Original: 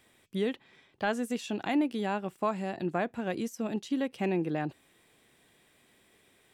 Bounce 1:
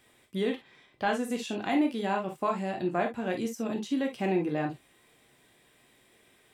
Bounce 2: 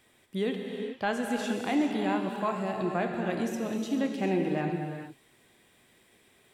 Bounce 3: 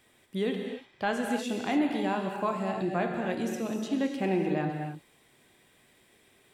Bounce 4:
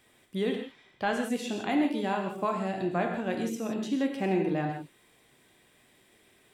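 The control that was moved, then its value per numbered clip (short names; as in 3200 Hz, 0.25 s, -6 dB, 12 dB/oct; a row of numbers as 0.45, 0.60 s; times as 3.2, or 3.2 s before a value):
non-linear reverb, gate: 80, 470, 320, 190 ms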